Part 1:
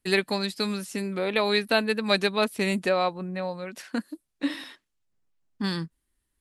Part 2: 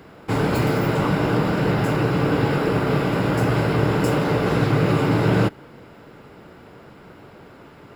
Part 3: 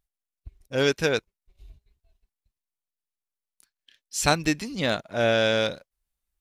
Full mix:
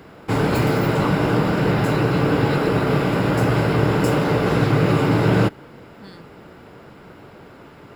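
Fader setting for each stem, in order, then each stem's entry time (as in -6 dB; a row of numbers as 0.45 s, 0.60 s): -15.0 dB, +1.5 dB, mute; 0.40 s, 0.00 s, mute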